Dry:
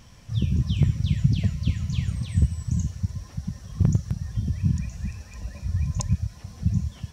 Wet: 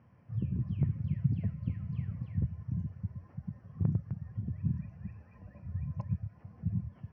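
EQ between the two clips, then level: running mean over 12 samples; HPF 90 Hz 24 dB/oct; air absorption 300 m; -8.0 dB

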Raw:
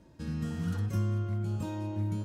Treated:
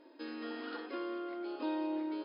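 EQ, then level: brick-wall FIR band-pass 250–5200 Hz; +3.0 dB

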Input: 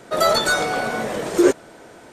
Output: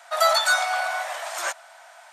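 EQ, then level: elliptic high-pass 670 Hz, stop band 40 dB; 0.0 dB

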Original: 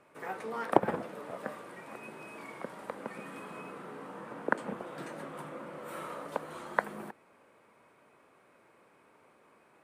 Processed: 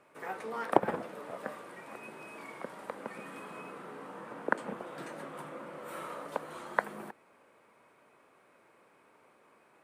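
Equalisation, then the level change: low shelf 220 Hz -4.5 dB; 0.0 dB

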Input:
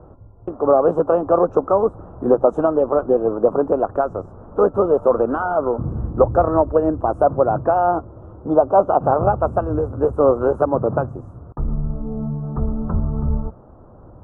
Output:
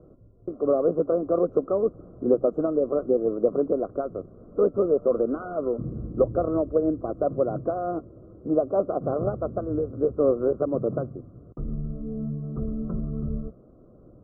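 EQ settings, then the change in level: running mean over 50 samples; bell 83 Hz -13 dB 0.33 oct; low shelf 160 Hz -10 dB; 0.0 dB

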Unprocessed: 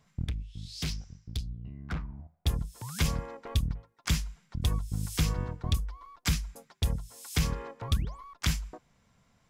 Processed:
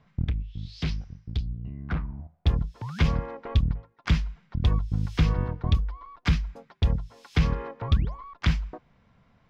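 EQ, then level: air absorption 260 m; +6.0 dB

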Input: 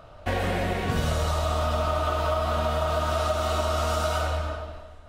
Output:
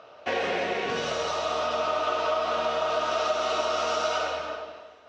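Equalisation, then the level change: air absorption 180 m; speaker cabinet 340–8000 Hz, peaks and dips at 440 Hz +6 dB, 2600 Hz +4 dB, 5800 Hz +7 dB; high shelf 3400 Hz +9.5 dB; 0.0 dB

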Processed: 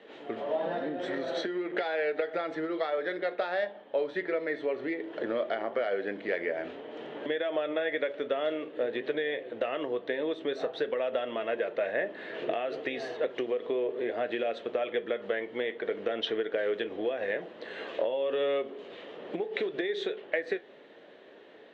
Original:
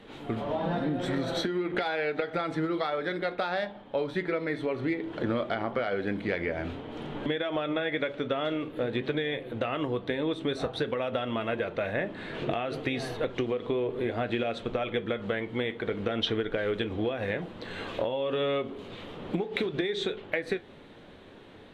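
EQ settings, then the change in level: speaker cabinet 280–6800 Hz, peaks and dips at 630 Hz +6 dB, 1800 Hz +8 dB, 2900 Hz +4 dB; bell 440 Hz +7 dB 0.92 oct; -6.5 dB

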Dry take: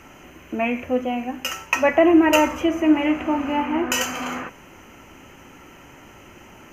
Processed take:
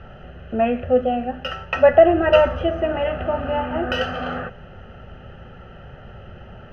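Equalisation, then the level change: LPF 3000 Hz 12 dB/oct; low shelf 480 Hz +11.5 dB; fixed phaser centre 1500 Hz, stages 8; +2.5 dB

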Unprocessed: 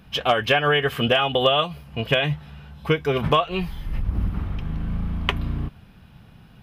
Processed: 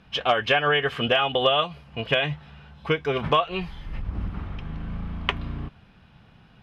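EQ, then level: air absorption 83 m; low shelf 360 Hz -6.5 dB; 0.0 dB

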